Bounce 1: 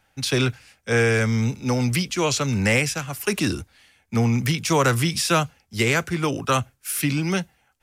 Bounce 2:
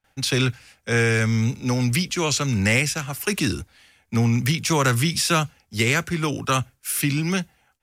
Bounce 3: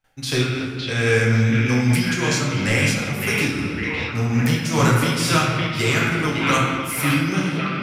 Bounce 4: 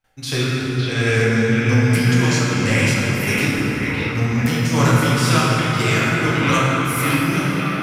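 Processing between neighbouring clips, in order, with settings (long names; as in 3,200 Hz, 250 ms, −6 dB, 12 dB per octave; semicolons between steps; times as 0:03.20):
noise gate with hold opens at −54 dBFS; dynamic equaliser 600 Hz, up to −5 dB, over −32 dBFS, Q 0.72; level +1.5 dB
echo through a band-pass that steps 559 ms, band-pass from 2,800 Hz, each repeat −0.7 octaves, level −1 dB; convolution reverb RT60 2.1 s, pre-delay 7 ms, DRR −4.5 dB; amplitude modulation by smooth noise, depth 60%
dense smooth reverb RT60 4.8 s, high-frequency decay 0.45×, DRR −0.5 dB; level −1 dB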